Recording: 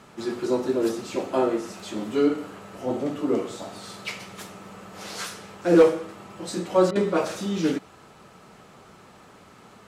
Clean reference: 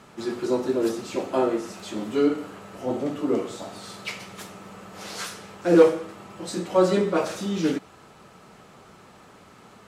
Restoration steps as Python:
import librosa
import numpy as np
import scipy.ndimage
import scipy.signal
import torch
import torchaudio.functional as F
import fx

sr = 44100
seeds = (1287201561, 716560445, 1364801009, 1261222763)

y = fx.fix_declip(x, sr, threshold_db=-8.0)
y = fx.fix_interpolate(y, sr, at_s=(6.91,), length_ms=43.0)